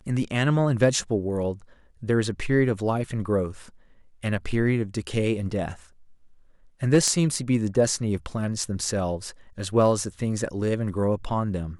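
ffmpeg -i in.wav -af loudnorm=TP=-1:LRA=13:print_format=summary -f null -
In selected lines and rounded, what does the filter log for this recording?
Input Integrated:    -25.3 LUFS
Input True Peak:      -3.9 dBTP
Input LRA:             2.5 LU
Input Threshold:     -35.8 LUFS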